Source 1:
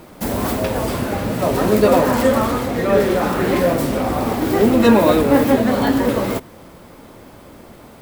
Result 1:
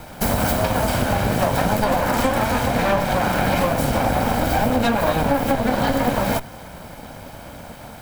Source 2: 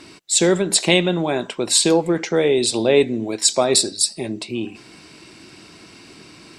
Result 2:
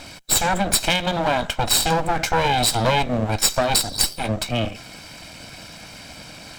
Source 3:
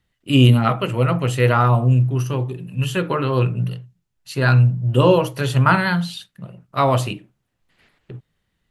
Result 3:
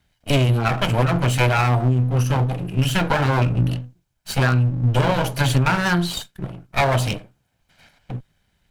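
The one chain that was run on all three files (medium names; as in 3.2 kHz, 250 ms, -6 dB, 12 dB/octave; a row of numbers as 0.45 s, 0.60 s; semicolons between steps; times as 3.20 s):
comb filter that takes the minimum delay 1.3 ms; compression 12:1, threshold -21 dBFS; normalise loudness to -20 LUFS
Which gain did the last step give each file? +5.5 dB, +6.0 dB, +7.0 dB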